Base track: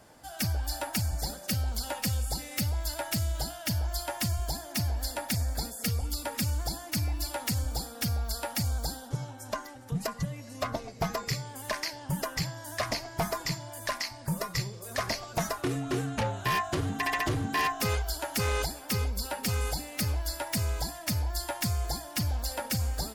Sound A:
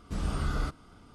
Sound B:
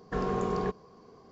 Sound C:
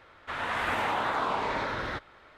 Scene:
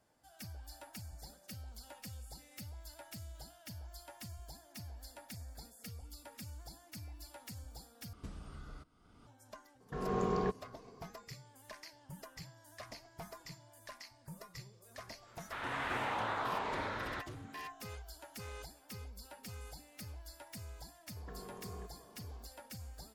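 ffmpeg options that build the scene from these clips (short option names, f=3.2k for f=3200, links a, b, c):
-filter_complex "[2:a]asplit=2[a][b];[0:a]volume=-18.5dB[c];[1:a]acompressor=threshold=-46dB:ratio=4:attack=93:release=686:knee=1:detection=peak[d];[a]dynaudnorm=f=180:g=3:m=9dB[e];[b]acompressor=threshold=-41dB:ratio=6:attack=3.2:release=140:knee=1:detection=peak[f];[c]asplit=2[g][h];[g]atrim=end=8.134[i];[d]atrim=end=1.14,asetpts=PTS-STARTPTS,volume=-5dB[j];[h]atrim=start=9.266[k];[e]atrim=end=1.31,asetpts=PTS-STARTPTS,volume=-12dB,afade=t=in:d=0.004:c=hsin,afade=t=out:st=1.306:d=0.004:c=hsin,adelay=9800[l];[3:a]atrim=end=2.37,asetpts=PTS-STARTPTS,volume=-8dB,afade=t=in:d=0.05,afade=t=out:st=2.32:d=0.05,adelay=15230[m];[f]atrim=end=1.31,asetpts=PTS-STARTPTS,volume=-6.5dB,afade=t=in:d=0.004:c=hsin,afade=t=out:st=1.306:d=0.004:c=hsin,adelay=933156S[n];[i][j]acrossfade=d=0.004:c1=hsin:c2=hsin[o];[o][k]acrossfade=d=0.004:c1=hsin:c2=hsin[p];[p][l][m][n]amix=inputs=4:normalize=0"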